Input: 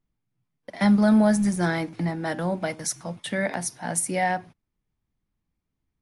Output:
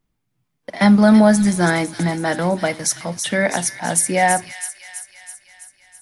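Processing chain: low shelf 210 Hz -4 dB; on a send: thin delay 0.328 s, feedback 60%, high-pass 2800 Hz, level -6.5 dB; on the sum: gain +8.5 dB

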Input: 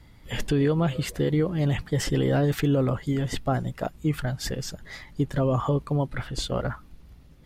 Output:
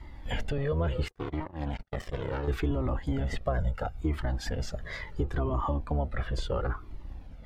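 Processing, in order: octaver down 1 oct, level +2 dB; bell 150 Hz -9 dB 2.1 oct; in parallel at 0 dB: limiter -23.5 dBFS, peak gain reduction 9 dB; 1.08–2.48 on the sum: power-law curve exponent 3; 3.58–4.01 comb 1.4 ms, depth 92%; compressor 3:1, threshold -29 dBFS, peak gain reduction 9.5 dB; LPF 1400 Hz 6 dB/oct; low shelf 62 Hz -6.5 dB; cascading flanger falling 0.72 Hz; gain +6.5 dB

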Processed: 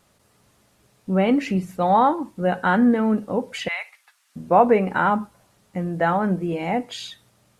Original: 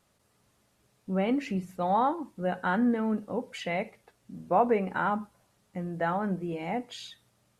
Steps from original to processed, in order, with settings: 3.68–4.36 HPF 1100 Hz 24 dB/oct; gain +8.5 dB

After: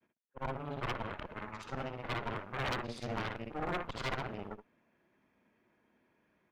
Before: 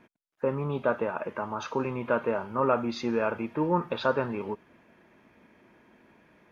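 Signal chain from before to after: short-time reversal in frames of 0.163 s; added harmonics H 2 -12 dB, 3 -7 dB, 4 -9 dB, 8 -33 dB, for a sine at -16 dBFS; overloaded stage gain 27.5 dB; gain -1.5 dB

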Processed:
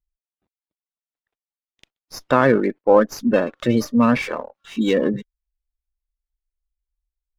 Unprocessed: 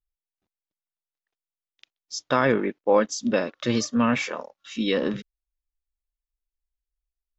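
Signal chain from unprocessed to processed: spectral gate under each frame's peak -25 dB strong; high shelf 3600 Hz -10.5 dB; running maximum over 3 samples; gain +6 dB

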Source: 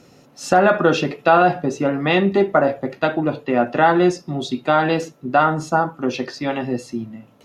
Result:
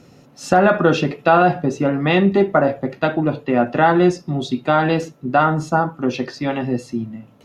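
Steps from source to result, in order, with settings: tone controls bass +5 dB, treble -2 dB

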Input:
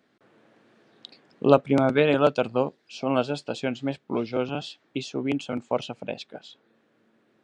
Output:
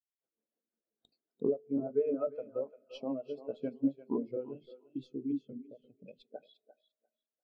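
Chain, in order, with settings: tracing distortion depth 0.11 ms; compressor 12:1, threshold -33 dBFS, peak gain reduction 23 dB; bell 1000 Hz +5 dB 1.5 oct, from 4.54 s -10 dB, from 6.34 s +4 dB; rotary speaker horn 6.7 Hz; high shelf 5000 Hz +7 dB; notches 50/100/150/200/250/300/350/400 Hz; thinning echo 0.347 s, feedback 46%, high-pass 340 Hz, level -5 dB; reverb RT60 3.0 s, pre-delay 4 ms, DRR 13 dB; spectral expander 2.5:1

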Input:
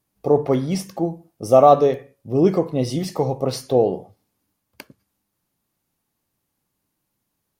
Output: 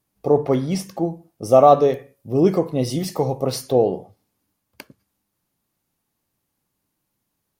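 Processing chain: 1.88–3.72 high shelf 9800 Hz +8.5 dB

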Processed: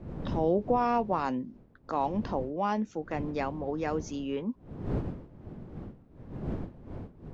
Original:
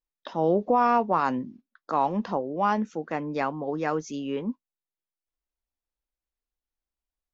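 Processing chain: wind noise 240 Hz -37 dBFS; dynamic EQ 1300 Hz, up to -6 dB, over -38 dBFS, Q 1.4; gain -3 dB

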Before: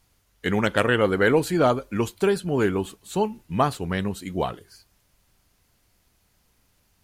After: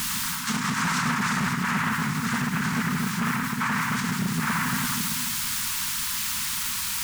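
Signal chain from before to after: shoebox room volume 730 m³, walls mixed, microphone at 6.8 m; noise vocoder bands 3; frequency shift +36 Hz; added noise white -29 dBFS; reverse; compressor 5:1, threshold -20 dBFS, peak gain reduction 16 dB; reverse; limiter -15 dBFS, peak gain reduction 7.5 dB; Chebyshev band-stop 250–910 Hz, order 5; on a send: reverse echo 0.547 s -10.5 dB; on the sum: overloaded stage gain 21.5 dB; Doppler distortion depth 0.28 ms; gain +2.5 dB

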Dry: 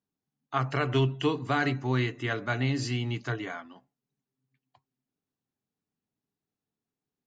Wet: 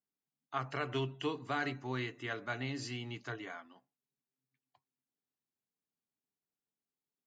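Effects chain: low shelf 190 Hz -9 dB; gain -7.5 dB

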